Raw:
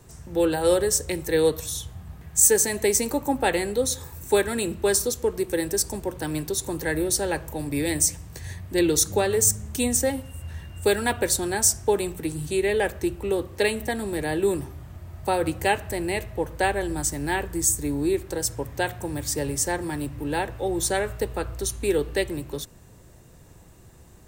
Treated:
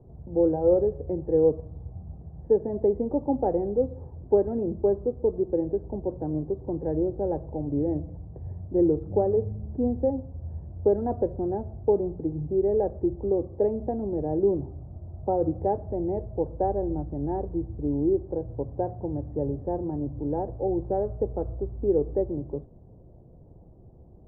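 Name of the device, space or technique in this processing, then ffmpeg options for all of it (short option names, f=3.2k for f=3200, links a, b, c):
under water: -af "lowpass=f=650:w=0.5412,lowpass=f=650:w=1.3066,equalizer=f=760:t=o:w=0.45:g=4"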